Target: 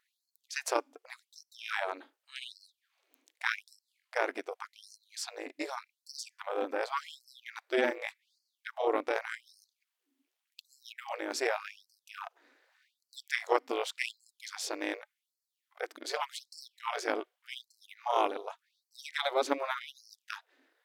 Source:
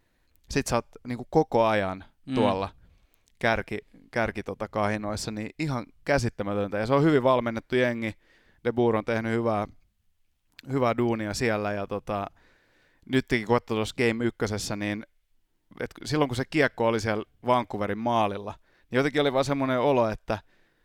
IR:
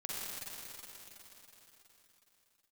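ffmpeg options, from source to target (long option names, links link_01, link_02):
-af "tremolo=f=270:d=0.857,afftfilt=real='re*gte(b*sr/1024,240*pow(4200/240,0.5+0.5*sin(2*PI*0.86*pts/sr)))':imag='im*gte(b*sr/1024,240*pow(4200/240,0.5+0.5*sin(2*PI*0.86*pts/sr)))':win_size=1024:overlap=0.75"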